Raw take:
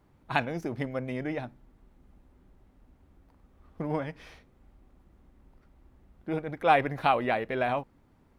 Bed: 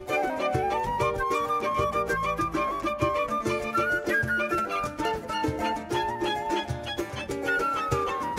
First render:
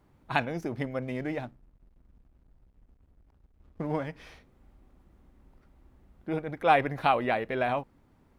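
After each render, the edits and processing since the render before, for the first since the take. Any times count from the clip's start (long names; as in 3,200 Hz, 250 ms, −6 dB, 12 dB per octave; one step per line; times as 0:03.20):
0:01.02–0:04.08: slack as between gear wheels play −53.5 dBFS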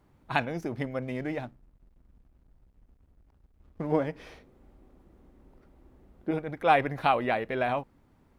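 0:03.92–0:06.31: parametric band 410 Hz +7.5 dB 1.7 octaves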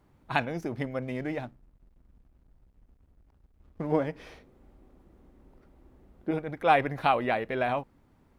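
no processing that can be heard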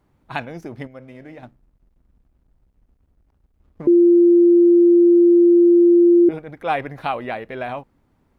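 0:00.87–0:01.43: tuned comb filter 53 Hz, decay 1.5 s
0:03.87–0:06.29: beep over 346 Hz −8.5 dBFS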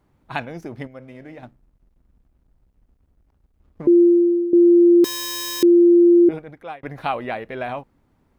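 0:04.01–0:04.53: fade out, to −15.5 dB
0:05.04–0:05.63: wrap-around overflow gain 23.5 dB
0:06.33–0:06.83: fade out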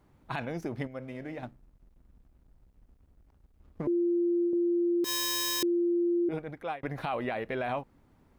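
brickwall limiter −19.5 dBFS, peak gain reduction 11 dB
downward compressor 1.5 to 1, threshold −33 dBFS, peak gain reduction 4 dB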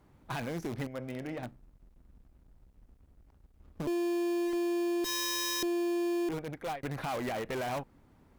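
in parallel at −8.5 dB: wrap-around overflow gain 30.5 dB
on the sum: tube saturation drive 27 dB, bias 0.4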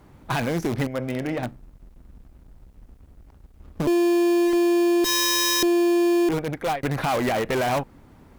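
level +11.5 dB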